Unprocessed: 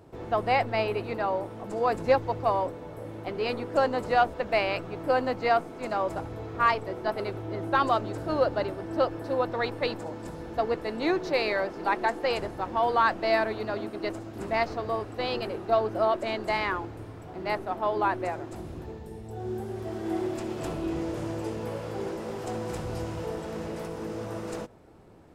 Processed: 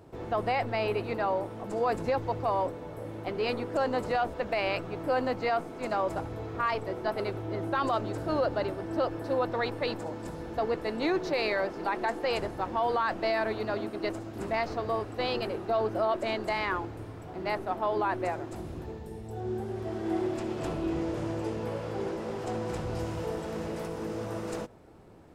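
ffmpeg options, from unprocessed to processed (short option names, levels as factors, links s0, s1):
-filter_complex "[0:a]asettb=1/sr,asplit=3[s0][s1][s2];[s0]atrim=end=19.404[s3];[s1]atrim=start=19.4:end=22.99,asetpts=PTS-STARTPTS,afade=t=in:d=0.004:c=qsin,afade=t=out:st=3.586:d=0.004:c=qsin,highshelf=f=8800:g=-9.5[s4];[s2]atrim=start=22.986[s5];[s3][s4]acrossfade=d=0.004:c1=hsin:c2=qsin[s6];[s6][s5]acrossfade=d=0.004:c1=qsin:c2=hsin,alimiter=limit=0.106:level=0:latency=1:release=24"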